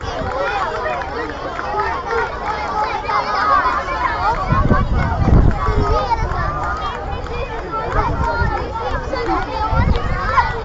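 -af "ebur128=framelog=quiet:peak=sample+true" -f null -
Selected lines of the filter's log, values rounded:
Integrated loudness:
  I:         -18.8 LUFS
  Threshold: -28.8 LUFS
Loudness range:
  LRA:         4.4 LU
  Threshold: -38.6 LUFS
  LRA low:   -21.0 LUFS
  LRA high:  -16.6 LUFS
Sample peak:
  Peak:       -2.9 dBFS
True peak:
  Peak:       -2.9 dBFS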